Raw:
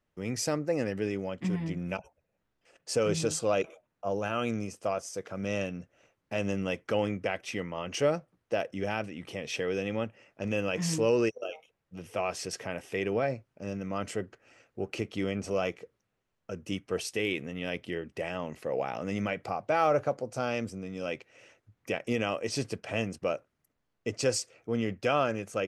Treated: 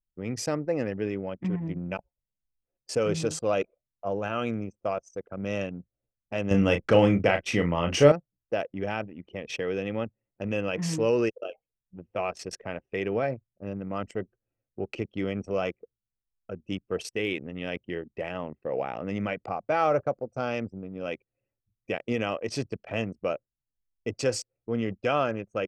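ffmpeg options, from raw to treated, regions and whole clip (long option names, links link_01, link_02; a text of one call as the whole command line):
ffmpeg -i in.wav -filter_complex "[0:a]asettb=1/sr,asplit=3[link_01][link_02][link_03];[link_01]atrim=end=6.514[link_04];[link_02]atrim=start=6.51:end=8.12,asetpts=PTS-STARTPTS,afade=type=in:duration=0.004:curve=qsin,afade=type=out:start_time=1.606:duration=0.004:curve=qsin,lowshelf=frequency=95:gain=11,asplit=2[link_05][link_06];[link_06]adelay=35,volume=-7.5dB[link_07];[link_05][link_07]amix=inputs=2:normalize=0,atrim=end_sample=71001,acontrast=72[link_08];[link_03]atrim=start=8.116[link_09];[link_04][link_08]acrossfade=duration=0.004:curve1=hsin:curve2=qsin[link_10];[link_10][link_09]acrossfade=duration=0.004:curve1=qsin:curve2=hsin,anlmdn=1.58,highshelf=frequency=5800:gain=-6.5,volume=1.5dB" out.wav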